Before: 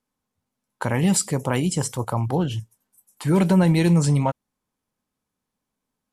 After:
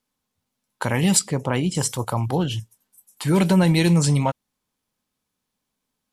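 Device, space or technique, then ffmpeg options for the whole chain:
presence and air boost: -filter_complex "[0:a]asettb=1/sr,asplit=3[link_01][link_02][link_03];[link_01]atrim=end=1.194[link_04];[link_02]atrim=start=1.19:end=1.75,asetpts=PTS-STARTPTS,afade=type=in:duration=0.004:curve=qsin,afade=type=out:start_time=0.556:duration=0.004:curve=qsin,aemphasis=mode=reproduction:type=75kf[link_05];[link_03]atrim=start=1.746[link_06];[link_04][link_05]acrossfade=duration=0.004:curve1=hsin:curve2=qsin[link_07];[link_07][link_06]acrossfade=duration=0.004:curve1=qsin:curve2=hsin,equalizer=frequency=3700:width_type=o:width=1.7:gain=6,highshelf=frequency=9900:gain=6.5"

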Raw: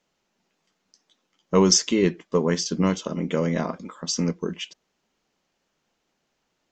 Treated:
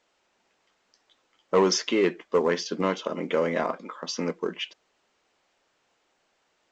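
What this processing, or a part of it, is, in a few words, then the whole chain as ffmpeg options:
telephone: -af "highpass=400,lowpass=3100,asoftclip=type=tanh:threshold=-16.5dB,volume=4dB" -ar 16000 -c:a pcm_alaw

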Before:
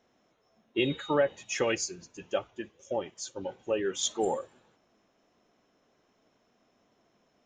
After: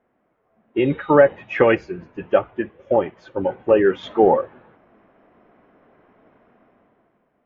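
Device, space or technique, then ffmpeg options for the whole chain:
action camera in a waterproof case: -af "lowpass=frequency=2100:width=0.5412,lowpass=frequency=2100:width=1.3066,dynaudnorm=framelen=130:gausssize=13:maxgain=13dB,volume=2dB" -ar 48000 -c:a aac -b:a 48k

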